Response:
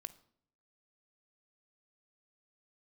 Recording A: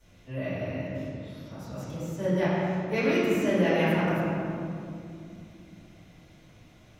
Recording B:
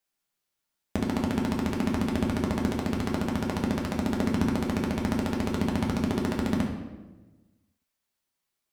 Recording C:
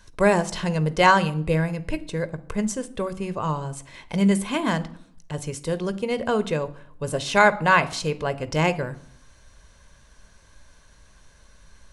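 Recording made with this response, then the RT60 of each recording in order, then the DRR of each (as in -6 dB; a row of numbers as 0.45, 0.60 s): C; 2.6, 1.2, 0.65 s; -17.5, -1.0, 13.0 dB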